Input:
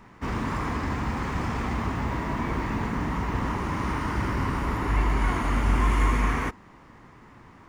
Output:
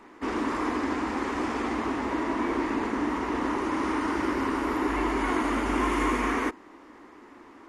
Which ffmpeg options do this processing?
-af "lowshelf=f=210:t=q:w=3:g=-12.5" -ar 48000 -c:a mp2 -b:a 64k

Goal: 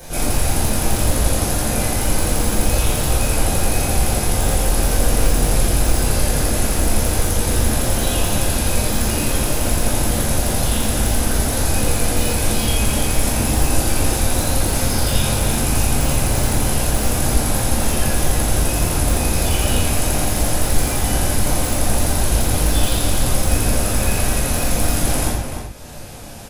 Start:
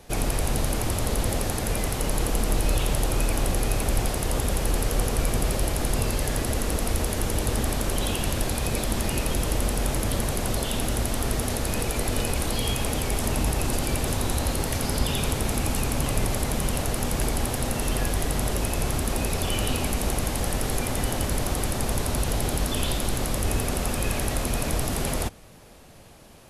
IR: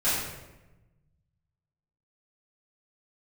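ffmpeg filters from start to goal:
-filter_complex "[0:a]asplit=2[a][b];[b]adelay=297.4,volume=-6dB,highshelf=f=4k:g=-6.69[c];[a][c]amix=inputs=2:normalize=0,acrossover=split=4400[d][e];[e]acontrast=34[f];[d][f]amix=inputs=2:normalize=0,aeval=exprs='0.237*(abs(mod(val(0)/0.237+3,4)-2)-1)':c=same,acompressor=mode=upward:threshold=-32dB:ratio=2.5[g];[1:a]atrim=start_sample=2205,afade=t=out:st=0.2:d=0.01,atrim=end_sample=9261[h];[g][h]afir=irnorm=-1:irlink=0,volume=-6.5dB"

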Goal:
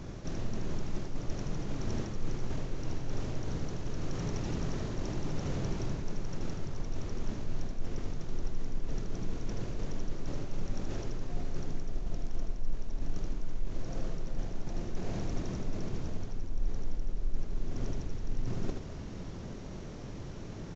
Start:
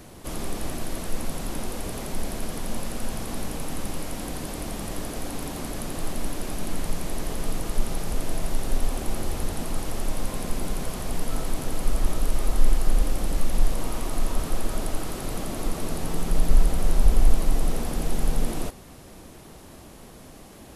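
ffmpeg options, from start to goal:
-af "highshelf=f=2.9k:g=-11,areverse,acompressor=threshold=-34dB:ratio=4,areverse,asetrate=24046,aresample=44100,atempo=1.83401,aecho=1:1:78:0.531,volume=4.5dB"

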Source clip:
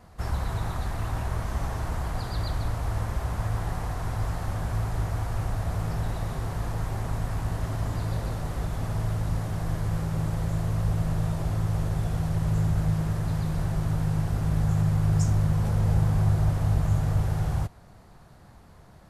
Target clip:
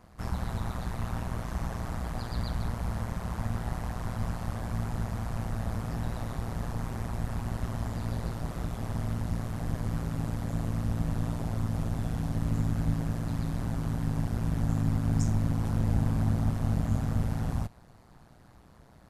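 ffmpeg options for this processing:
-af "tremolo=f=120:d=0.889"

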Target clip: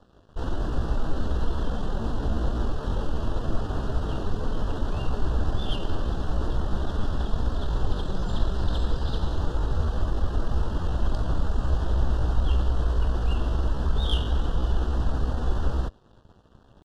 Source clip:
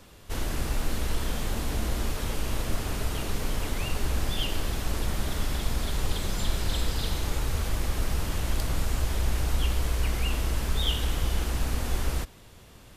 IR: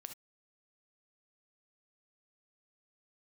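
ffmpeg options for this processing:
-af "atempo=0.77,aeval=exprs='sgn(val(0))*max(abs(val(0))-0.00237,0)':c=same,adynamicsmooth=sensitivity=1:basefreq=2.5k,asuperstop=centerf=2200:order=4:qfactor=1.6,volume=4dB"

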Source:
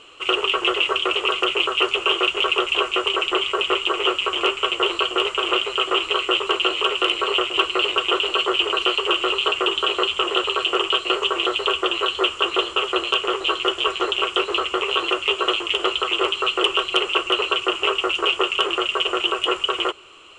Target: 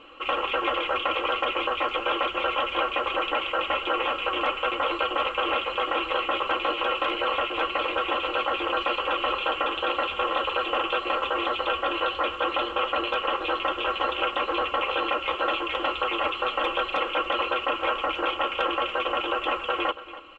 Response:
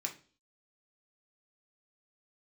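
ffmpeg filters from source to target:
-filter_complex "[0:a]afftfilt=real='re*lt(hypot(re,im),0.355)':imag='im*lt(hypot(re,im),0.355)':win_size=1024:overlap=0.75,lowpass=2k,aecho=1:1:3.7:0.82,asplit=2[a][b];[b]aecho=0:1:283:0.168[c];[a][c]amix=inputs=2:normalize=0"

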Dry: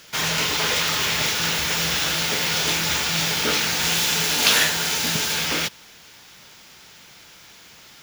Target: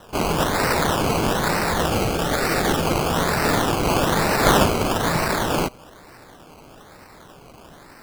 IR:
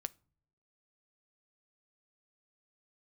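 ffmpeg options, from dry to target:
-filter_complex "[0:a]acrusher=samples=19:mix=1:aa=0.000001:lfo=1:lforange=11.4:lforate=1.1,asettb=1/sr,asplit=3[a][b][c];[a]atrim=end=1.874[d];[b]atrim=start=1.87:end=2.86,asetpts=PTS-STARTPTS,afade=t=in:d=0.004:c=qsin,afade=t=out:st=0.986:d=0.004:c=qsin,bandreject=f=1k:w=5.4[e];[c]atrim=start=2.856[f];[d][e]acrossfade=d=0.004:c1=hsin:c2=qsin[g];[g][f]acrossfade=d=0.004:c1=qsin:c2=hsin,volume=2dB"

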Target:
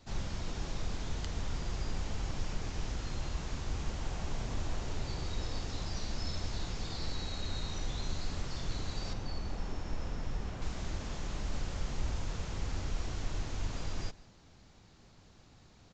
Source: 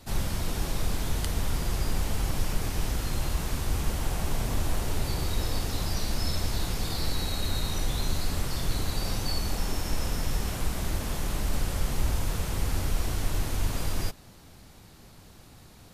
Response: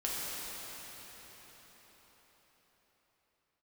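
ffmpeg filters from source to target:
-filter_complex "[0:a]asettb=1/sr,asplit=3[a][b][c];[a]atrim=end=9.134[d];[b]atrim=start=9.13:end=10.62,asetpts=PTS-STARTPTS,afade=t=in:d=0.004:c=qsin,afade=t=out:st=1.486:d=0.004:c=qsin,highshelf=f=3.1k:g=-10.5[e];[c]atrim=start=10.616[f];[d][e]acrossfade=d=0.004:c1=hsin:c2=qsin[g];[g][f]acrossfade=d=0.004:c1=qsin:c2=hsin,asplit=2[h][i];[i]aecho=0:1:160:0.0794[j];[h][j]amix=inputs=2:normalize=0,aresample=16000,aresample=44100,volume=-8dB"

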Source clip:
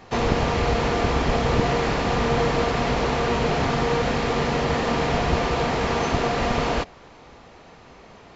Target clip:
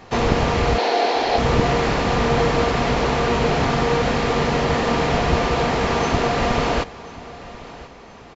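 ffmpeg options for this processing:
-filter_complex "[0:a]asettb=1/sr,asplit=3[a][b][c];[a]atrim=end=0.784[d];[b]atrim=start=0.78:end=1.38,asetpts=PTS-STARTPTS,afade=t=in:d=0.004:c=qsin,afade=t=out:st=0.596:d=0.004:c=qsin,highpass=f=320:w=0.5412,highpass=f=320:w=1.3066,equalizer=f=750:t=q:w=4:g=8,equalizer=f=1.2k:t=q:w=4:g=-7,equalizer=f=4.2k:t=q:w=4:g=8,lowpass=f=6.4k:w=0.5412,lowpass=f=6.4k:w=1.3066[e];[c]atrim=start=1.376[f];[d][e]acrossfade=d=0.004:c1=hsin:c2=qsin[g];[g][f]acrossfade=d=0.004:c1=qsin:c2=hsin,aecho=1:1:1036|2072|3108:0.119|0.0368|0.0114,volume=3dB"

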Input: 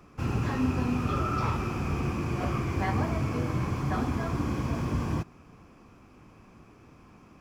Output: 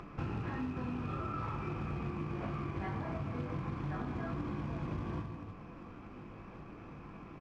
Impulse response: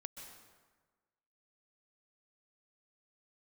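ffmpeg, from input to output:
-filter_complex "[0:a]aecho=1:1:20|48|87.2|142.1|218.9:0.631|0.398|0.251|0.158|0.1,asplit=2[a][b];[1:a]atrim=start_sample=2205,asetrate=48510,aresample=44100,adelay=6[c];[b][c]afir=irnorm=-1:irlink=0,volume=-6dB[d];[a][d]amix=inputs=2:normalize=0,acompressor=threshold=-33dB:ratio=12,acrusher=bits=4:mode=log:mix=0:aa=0.000001,lowpass=2.7k,acompressor=mode=upward:threshold=-41dB:ratio=2.5,volume=-1.5dB"

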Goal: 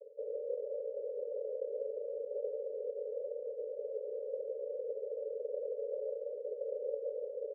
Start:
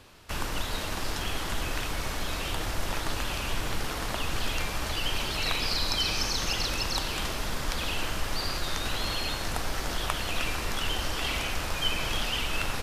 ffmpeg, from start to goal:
-filter_complex "[0:a]areverse,acompressor=mode=upward:threshold=-33dB:ratio=2.5,areverse,afreqshift=-130,asplit=2[a][b];[b]aecho=0:1:202|404|606:0.15|0.0554|0.0205[c];[a][c]amix=inputs=2:normalize=0,asoftclip=type=tanh:threshold=-27.5dB,aeval=exprs='0.0422*(cos(1*acos(clip(val(0)/0.0422,-1,1)))-cos(1*PI/2))+0.0106*(cos(4*acos(clip(val(0)/0.0422,-1,1)))-cos(4*PI/2))+0.000422*(cos(5*acos(clip(val(0)/0.0422,-1,1)))-cos(5*PI/2))+0.00119*(cos(7*acos(clip(val(0)/0.0422,-1,1)))-cos(7*PI/2))+0.00299*(cos(8*acos(clip(val(0)/0.0422,-1,1)))-cos(8*PI/2))':c=same,asuperpass=centerf=500:order=20:qfactor=3,atempo=1.7,volume=10dB"

